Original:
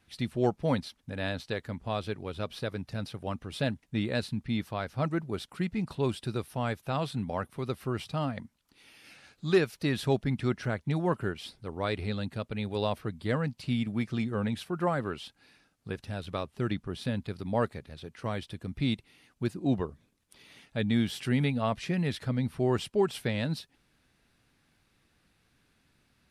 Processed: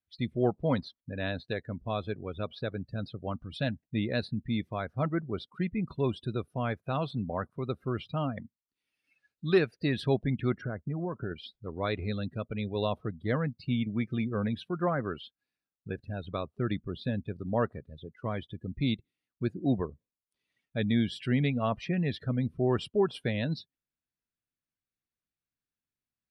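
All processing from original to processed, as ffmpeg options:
-filter_complex "[0:a]asettb=1/sr,asplit=3[a][b][c];[a]atrim=end=3.354[d];[b]atrim=start=3.35:end=3.82,asetpts=PTS-STARTPTS,afade=t=in:d=0.004:c=qsin,afade=t=out:st=0.466:d=0.004:c=qsin,equalizer=f=400:w=3.1:g=-10.5,acompressor=mode=upward:threshold=-41dB:ratio=2.5:attack=3.2:release=140:knee=2.83:detection=peak[e];[c]atrim=start=3.816[f];[d][e]acrossfade=d=0.004:c1=hsin:c2=qsin[g];[g][f]acrossfade=d=0.004:c1=qsin:c2=hsin,asettb=1/sr,asplit=3[h][i][j];[h]atrim=end=10.614[k];[i]atrim=start=10.61:end=11.31,asetpts=PTS-STARTPTS,afade=t=in:d=0.004:c=qsin,afade=t=out:st=0.696:d=0.004:c=qsin,lowpass=2k,acompressor=threshold=-29dB:ratio=8:attack=3.2:release=140:knee=1:detection=peak[l];[j]atrim=start=11.306[m];[k][l]acrossfade=d=0.004:c1=hsin:c2=qsin[n];[n][m]acrossfade=d=0.004:c1=qsin:c2=hsin,bandreject=f=850:w=12,afftdn=nr=29:nf=-42"

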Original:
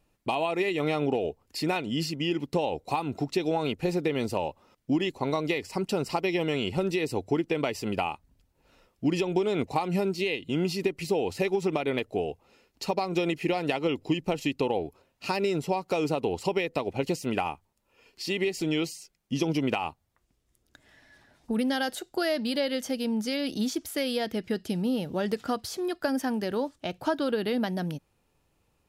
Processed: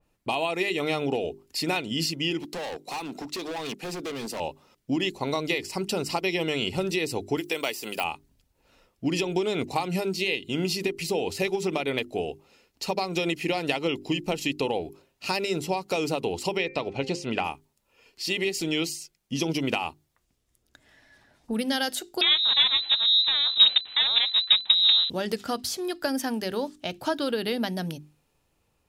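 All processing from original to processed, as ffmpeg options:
-filter_complex "[0:a]asettb=1/sr,asplit=3[a][b][c];[a]atrim=end=2.414[d];[b]atrim=start=2.41:end=4.4,asetpts=PTS-STARTPTS,afade=t=in:d=0.004:c=qsin,afade=t=out:st=1.986:d=0.004:c=qsin,highpass=f=180:w=0.5412,highpass=f=180:w=1.3066,volume=31dB,asoftclip=hard,volume=-31dB[e];[c]atrim=start=4.396[f];[d][e]acrossfade=d=0.004:c1=hsin:c2=qsin[g];[g][f]acrossfade=d=0.004:c1=qsin:c2=hsin,asettb=1/sr,asplit=3[h][i][j];[h]atrim=end=7.374[k];[i]atrim=start=7.37:end=8.04,asetpts=PTS-STARTPTS,afade=t=in:d=0.004:c=qsin,afade=t=out:st=0.666:d=0.004:c=qsin,highpass=f=230:p=1,aemphasis=mode=production:type=bsi,deesser=0.8[l];[j]atrim=start=8.036[m];[k][l]acrossfade=d=0.004:c1=hsin:c2=qsin[n];[n][m]acrossfade=d=0.004:c1=qsin:c2=hsin,asettb=1/sr,asplit=3[o][p][q];[o]atrim=end=16.574[r];[p]atrim=start=16.57:end=17.44,asetpts=PTS-STARTPTS,afade=t=in:d=0.004:c=qsin,afade=t=out:st=0.866:d=0.004:c=qsin,lowpass=5.2k,bandreject=f=262.7:t=h:w=4,bandreject=f=525.4:t=h:w=4,bandreject=f=788.1:t=h:w=4,bandreject=f=1.0508k:t=h:w=4,bandreject=f=1.3135k:t=h:w=4,bandreject=f=1.5762k:t=h:w=4,bandreject=f=1.8389k:t=h:w=4,bandreject=f=2.1016k:t=h:w=4,bandreject=f=2.3643k:t=h:w=4,bandreject=f=2.627k:t=h:w=4[s];[q]atrim=start=17.436[t];[r][s]acrossfade=d=0.004:c1=hsin:c2=qsin[u];[u][t]acrossfade=d=0.004:c1=qsin:c2=hsin,asettb=1/sr,asplit=3[v][w][x];[v]atrim=end=22.214[y];[w]atrim=start=22.21:end=25.1,asetpts=PTS-STARTPTS,afade=t=in:d=0.004:c=qsin,afade=t=out:st=2.886:d=0.004:c=qsin,acrusher=bits=5:dc=4:mix=0:aa=0.000001,equalizer=f=200:t=o:w=1:g=6.5,lowpass=f=3.4k:t=q:w=0.5098,lowpass=f=3.4k:t=q:w=0.6013,lowpass=f=3.4k:t=q:w=0.9,lowpass=f=3.4k:t=q:w=2.563,afreqshift=-4000[z];[x]atrim=start=25.096[aa];[y][z]acrossfade=d=0.004:c1=hsin:c2=qsin[ab];[ab][aa]acrossfade=d=0.004:c1=qsin:c2=hsin,bandreject=f=50:t=h:w=6,bandreject=f=100:t=h:w=6,bandreject=f=150:t=h:w=6,bandreject=f=200:t=h:w=6,bandreject=f=250:t=h:w=6,bandreject=f=300:t=h:w=6,bandreject=f=350:t=h:w=6,bandreject=f=400:t=h:w=6,adynamicequalizer=threshold=0.00562:dfrequency=2300:dqfactor=0.7:tfrequency=2300:tqfactor=0.7:attack=5:release=100:ratio=0.375:range=3.5:mode=boostabove:tftype=highshelf"

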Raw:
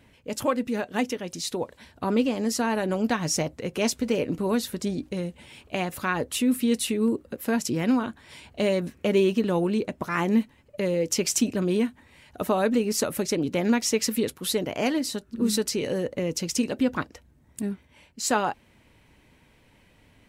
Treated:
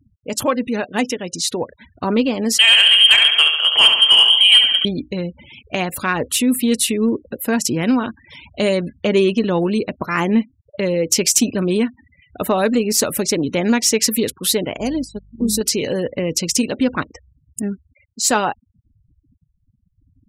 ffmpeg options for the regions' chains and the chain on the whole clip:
-filter_complex "[0:a]asettb=1/sr,asplit=3[a][b][c];[a]atrim=end=2.584[d];[b]atrim=start=2.58:end=4.85,asetpts=PTS-STARTPTS,afade=t=in:d=0.004:c=qsin,afade=t=out:st=2.266:d=0.004:c=qsin,acontrast=43,aecho=1:1:71|142|213|284|355|426|497|568:0.473|0.274|0.159|0.0923|0.0535|0.0311|0.018|0.0104,atrim=end_sample=100107,lowpass=f=2.9k:t=q:w=0.5098,lowpass=f=2.9k:t=q:w=0.6013,lowpass=f=2.9k:t=q:w=0.9,lowpass=f=2.9k:t=q:w=2.563,afreqshift=-3400[e];[c]atrim=start=4.846[f];[d][e]acrossfade=d=0.004:c1=hsin:c2=qsin[g];[g][f]acrossfade=d=0.004:c1=qsin:c2=hsin,asettb=1/sr,asplit=3[h][i][j];[h]atrim=end=14.774[k];[i]atrim=start=14.77:end=15.61,asetpts=PTS-STARTPTS,afade=t=in:d=0.004:c=qsin,afade=t=out:st=0.836:d=0.004:c=qsin,equalizer=f=1.8k:w=0.46:g=-12.5,aeval=exprs='val(0)+0.00794*(sin(2*PI*50*n/s)+sin(2*PI*2*50*n/s)/2+sin(2*PI*3*50*n/s)/3+sin(2*PI*4*50*n/s)/4+sin(2*PI*5*50*n/s)/5)':c=same,agate=range=-11dB:threshold=-32dB:ratio=16:release=100:detection=peak[l];[j]atrim=start=15.606[m];[k][l]acrossfade=d=0.004:c1=hsin:c2=qsin[n];[n][m]acrossfade=d=0.004:c1=qsin:c2=hsin,afftfilt=real='re*gte(hypot(re,im),0.00794)':imag='im*gte(hypot(re,im),0.00794)':win_size=1024:overlap=0.75,highshelf=f=3k:g=6,acontrast=59"

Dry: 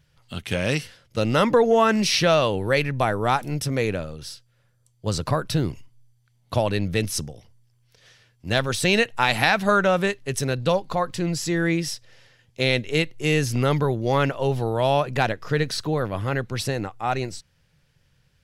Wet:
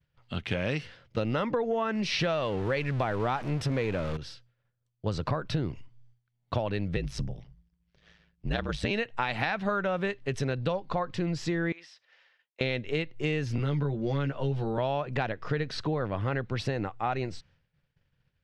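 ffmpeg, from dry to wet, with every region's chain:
-filter_complex "[0:a]asettb=1/sr,asplit=3[a][b][c];[a]atrim=end=2.194[d];[b]atrim=start=2.19:end=4.17,asetpts=PTS-STARTPTS,afade=t=in:d=0.004:c=qsin,afade=t=out:st=1.976:d=0.004:c=qsin,aeval=exprs='val(0)+0.5*0.0355*sgn(val(0))':c=same,highshelf=f=9.8k:g=6.5[e];[c]atrim=start=4.166[f];[d][e]acrossfade=d=0.004:c1=hsin:c2=qsin[g];[g][f]acrossfade=d=0.004:c1=qsin:c2=hsin,asettb=1/sr,asplit=3[h][i][j];[h]atrim=end=6.964[k];[i]atrim=start=6.96:end=8.91,asetpts=PTS-STARTPTS,afade=t=in:d=0.004:c=qsin,afade=t=out:st=1.946:d=0.004:c=qsin,equalizer=f=76:t=o:w=0.67:g=15,aeval=exprs='val(0)*sin(2*PI*53*n/s)':c=same[l];[j]atrim=start=8.906[m];[k][l]acrossfade=d=0.004:c1=hsin:c2=qsin[n];[n][m]acrossfade=d=0.004:c1=qsin:c2=hsin,asettb=1/sr,asplit=3[o][p][q];[o]atrim=end=11.724[r];[p]atrim=start=11.72:end=12.61,asetpts=PTS-STARTPTS,afade=t=in:d=0.004:c=qsin,afade=t=out:st=0.886:d=0.004:c=qsin,highpass=940,acompressor=threshold=-39dB:ratio=4:attack=3.2:release=140:knee=1:detection=peak,highshelf=f=6.6k:g=-8.5[s];[q]atrim=start=12.606[t];[r][s]acrossfade=d=0.004:c1=hsin:c2=qsin[u];[u][t]acrossfade=d=0.004:c1=qsin:c2=hsin,asettb=1/sr,asplit=3[v][w][x];[v]atrim=end=13.584[y];[w]atrim=start=13.58:end=14.78,asetpts=PTS-STARTPTS,afade=t=in:d=0.004:c=qsin,afade=t=out:st=1.196:d=0.004:c=qsin,equalizer=f=1.5k:w=7:g=5.5,acrossover=split=360|3000[z][aa][ab];[aa]acompressor=threshold=-37dB:ratio=2:attack=3.2:release=140:knee=2.83:detection=peak[ac];[z][ac][ab]amix=inputs=3:normalize=0,asplit=2[ad][ae];[ae]adelay=14,volume=-4dB[af];[ad][af]amix=inputs=2:normalize=0,atrim=end_sample=52920[ag];[x]atrim=start=14.776[ah];[y][ag]acrossfade=d=0.004:c1=hsin:c2=qsin[ai];[ai][ah]acrossfade=d=0.004:c1=qsin:c2=hsin,lowpass=3.3k,agate=range=-33dB:threshold=-54dB:ratio=3:detection=peak,acompressor=threshold=-26dB:ratio=6"

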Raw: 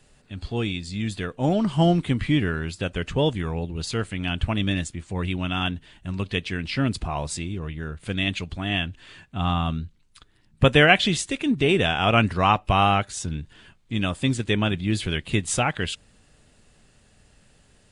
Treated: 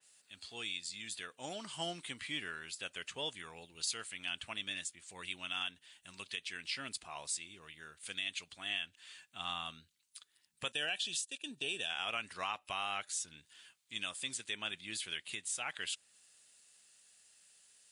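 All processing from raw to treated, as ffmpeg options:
-filter_complex "[0:a]asettb=1/sr,asplit=3[a][b][c];[a]atrim=end=10.724[d];[b]atrim=start=10.72:end=11.9,asetpts=PTS-STARTPTS,afade=t=in:d=0.004:c=qsin,afade=t=out:st=1.176:d=0.004:c=qsin,agate=range=-12dB:threshold=-32dB:ratio=16:release=100:detection=peak,asuperstop=centerf=2100:order=4:qfactor=4.2,equalizer=f=1.2k:w=2.4:g=-10.5[e];[c]atrim=start=11.896[f];[d][e]acrossfade=d=0.004:c1=hsin:c2=qsin[g];[g][f]acrossfade=d=0.004:c1=qsin:c2=hsin,aderivative,alimiter=level_in=1.5dB:limit=-24dB:level=0:latency=1:release=200,volume=-1.5dB,adynamicequalizer=threshold=0.00251:dfrequency=3000:dqfactor=0.7:tfrequency=3000:tqfactor=0.7:attack=5:release=100:ratio=0.375:range=2:mode=cutabove:tftype=highshelf,volume=1.5dB"

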